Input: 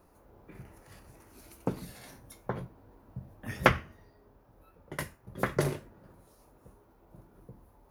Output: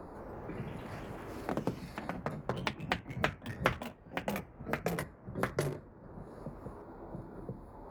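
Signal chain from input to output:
adaptive Wiener filter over 15 samples
delay with pitch and tempo change per echo 165 ms, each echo +3 semitones, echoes 3
multiband upward and downward compressor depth 70%
level −2 dB

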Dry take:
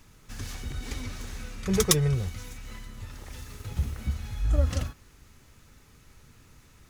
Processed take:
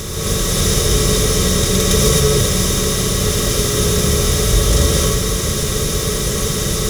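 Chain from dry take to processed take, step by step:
compressor on every frequency bin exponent 0.2
reverb whose tail is shaped and stops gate 290 ms rising, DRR −7 dB
level −4 dB

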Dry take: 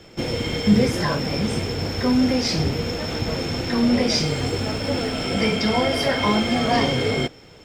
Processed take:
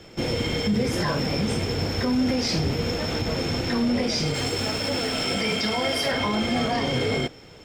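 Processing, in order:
0:04.34–0:06.12: spectral tilt +1.5 dB per octave
brickwall limiter −15.5 dBFS, peak gain reduction 10 dB

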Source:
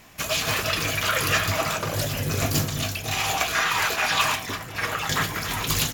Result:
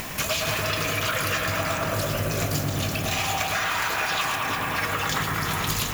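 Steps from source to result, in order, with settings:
upward compression, threshold −30 dBFS
on a send: delay with a low-pass on its return 109 ms, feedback 75%, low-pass 2,000 Hz, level −3.5 dB
on the sum: downward compressor, threshold −28 dBFS, peak gain reduction 11 dB
background noise violet −47 dBFS
level +5 dB

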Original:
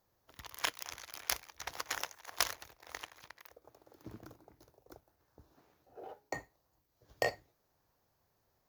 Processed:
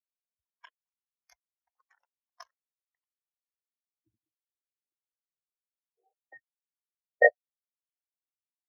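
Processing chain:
every bin expanded away from the loudest bin 4 to 1
level +4 dB

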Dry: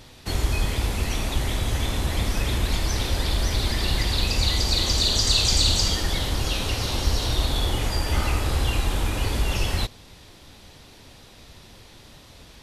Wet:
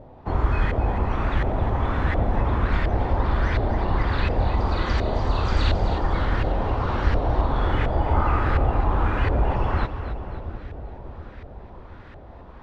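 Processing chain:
pitch vibrato 2.6 Hz 19 cents
auto-filter low-pass saw up 1.4 Hz 640–1,800 Hz
echo with a time of its own for lows and highs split 720 Hz, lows 719 ms, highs 268 ms, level −10.5 dB
level +2 dB

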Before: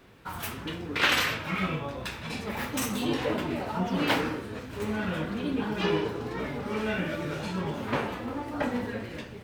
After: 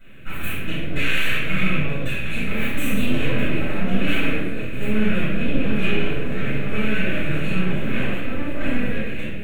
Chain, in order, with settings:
brickwall limiter −21.5 dBFS, peak gain reduction 10.5 dB
half-wave rectification
phaser with its sweep stopped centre 2,200 Hz, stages 4
hollow resonant body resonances 920/2,500 Hz, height 12 dB, ringing for 25 ms
convolution reverb RT60 0.70 s, pre-delay 5 ms, DRR −13 dB
level −6 dB

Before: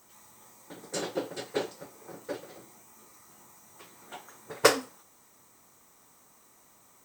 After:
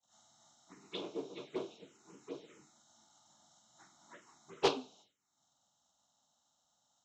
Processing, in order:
partials spread apart or drawn together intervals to 78%
phaser swept by the level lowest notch 350 Hz, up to 1,900 Hz, full sweep at −35 dBFS
downward expander −56 dBFS
highs frequency-modulated by the lows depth 0.18 ms
level −5 dB

